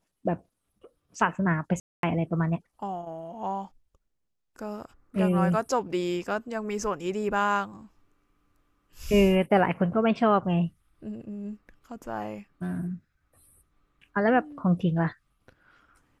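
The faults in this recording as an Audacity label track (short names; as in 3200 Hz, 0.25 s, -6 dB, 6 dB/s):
1.800000	2.030000	gap 0.232 s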